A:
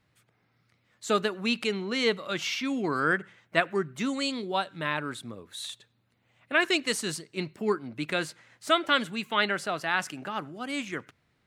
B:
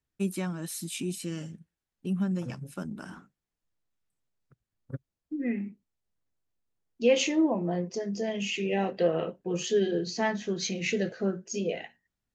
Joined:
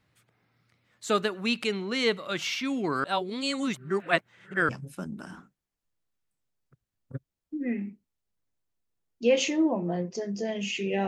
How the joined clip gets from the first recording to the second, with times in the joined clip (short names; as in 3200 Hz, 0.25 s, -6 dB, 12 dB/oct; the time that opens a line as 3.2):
A
3.04–4.69 reverse
4.69 switch to B from 2.48 s